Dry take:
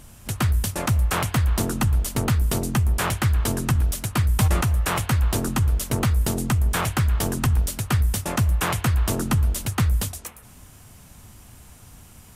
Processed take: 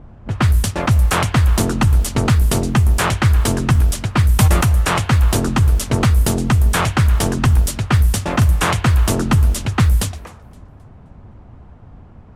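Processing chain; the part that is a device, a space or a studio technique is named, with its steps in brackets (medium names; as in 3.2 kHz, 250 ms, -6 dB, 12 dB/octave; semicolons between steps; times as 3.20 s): 8.17–8.71 s: doubling 42 ms -12 dB; cassette deck with a dynamic noise filter (white noise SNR 31 dB; level-controlled noise filter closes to 770 Hz, open at -16.5 dBFS); modulated delay 261 ms, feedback 35%, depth 128 cents, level -24 dB; trim +7 dB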